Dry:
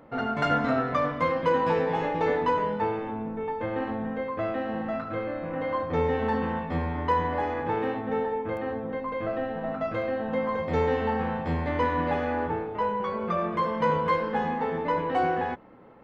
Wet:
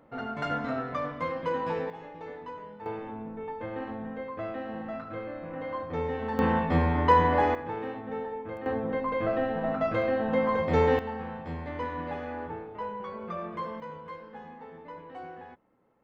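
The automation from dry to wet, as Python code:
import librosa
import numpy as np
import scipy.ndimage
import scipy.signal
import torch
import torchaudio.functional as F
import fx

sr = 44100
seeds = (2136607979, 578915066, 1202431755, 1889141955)

y = fx.gain(x, sr, db=fx.steps((0.0, -6.5), (1.9, -16.5), (2.86, -6.0), (6.39, 4.5), (7.55, -7.0), (8.66, 2.0), (10.99, -8.5), (13.8, -17.5)))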